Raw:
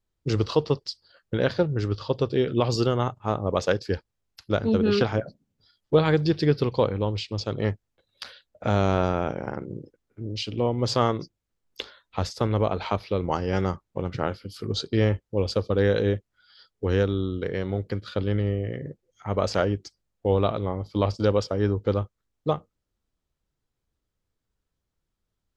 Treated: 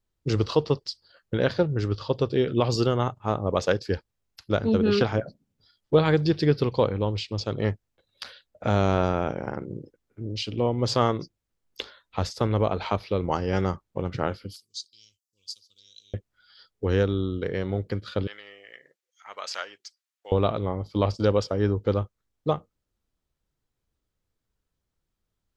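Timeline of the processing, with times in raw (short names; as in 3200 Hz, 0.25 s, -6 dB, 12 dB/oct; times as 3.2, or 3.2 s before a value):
14.56–16.14 inverse Chebyshev high-pass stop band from 1900 Hz, stop band 50 dB
18.27–20.32 HPF 1500 Hz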